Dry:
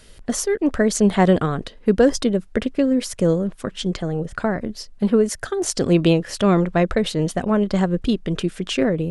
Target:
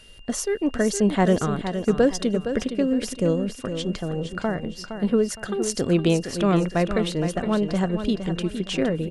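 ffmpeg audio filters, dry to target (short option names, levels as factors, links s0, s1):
-filter_complex "[0:a]aeval=exprs='val(0)+0.00501*sin(2*PI*2800*n/s)':c=same,asplit=2[s0][s1];[s1]aecho=0:1:464|928|1392|1856:0.355|0.117|0.0386|0.0128[s2];[s0][s2]amix=inputs=2:normalize=0,volume=0.631"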